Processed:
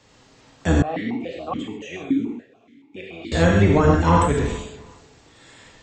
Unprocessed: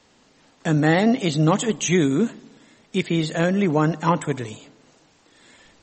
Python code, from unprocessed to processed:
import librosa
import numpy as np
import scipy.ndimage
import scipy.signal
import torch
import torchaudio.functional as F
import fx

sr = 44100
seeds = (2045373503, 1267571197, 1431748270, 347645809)

y = fx.octave_divider(x, sr, octaves=1, level_db=-1.0)
y = fx.echo_feedback(y, sr, ms=366, feedback_pct=28, wet_db=-22.5)
y = fx.rev_gated(y, sr, seeds[0], gate_ms=170, shape='flat', drr_db=-2.0)
y = fx.vowel_held(y, sr, hz=7.0, at=(0.82, 3.32))